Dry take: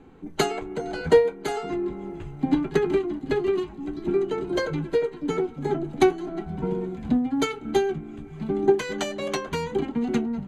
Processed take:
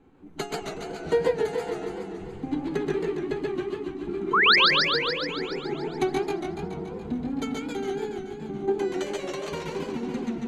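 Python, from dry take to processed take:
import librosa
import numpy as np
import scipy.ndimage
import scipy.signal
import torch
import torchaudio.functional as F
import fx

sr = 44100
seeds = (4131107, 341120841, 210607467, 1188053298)

p1 = fx.tremolo_shape(x, sr, shape='triangle', hz=3.7, depth_pct=55)
p2 = fx.spec_paint(p1, sr, seeds[0], shape='rise', start_s=4.33, length_s=0.23, low_hz=970.0, high_hz=5400.0, level_db=-13.0)
p3 = p2 + fx.echo_single(p2, sr, ms=127, db=-3.5, dry=0)
p4 = fx.echo_warbled(p3, sr, ms=142, feedback_pct=68, rate_hz=2.8, cents=168, wet_db=-3)
y = p4 * 10.0 ** (-6.5 / 20.0)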